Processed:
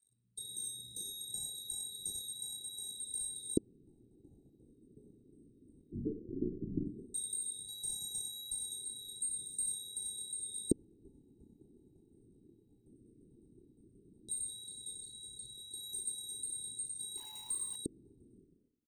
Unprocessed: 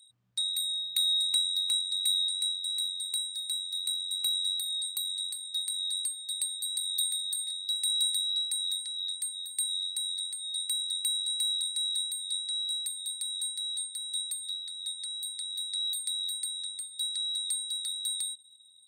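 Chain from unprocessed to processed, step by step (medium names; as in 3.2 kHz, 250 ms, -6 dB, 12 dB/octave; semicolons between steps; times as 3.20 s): 5.91–6.86 s: median filter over 41 samples; 14.98–15.71 s: distance through air 62 m; loudest bins only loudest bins 32; frequency-shifting echo 92 ms, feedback 55%, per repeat +32 Hz, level -12.5 dB; Schroeder reverb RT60 0.37 s, combs from 30 ms, DRR 0.5 dB; waveshaping leveller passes 3; LFO low-pass square 0.14 Hz 310–3700 Hz; Chebyshev band-stop 430–7000 Hz, order 4; 17.17–17.76 s: hysteresis with a dead band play -46.5 dBFS; trim +2.5 dB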